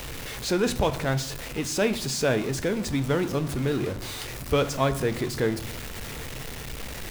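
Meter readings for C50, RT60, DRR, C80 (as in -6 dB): 15.0 dB, 0.65 s, 10.0 dB, 18.0 dB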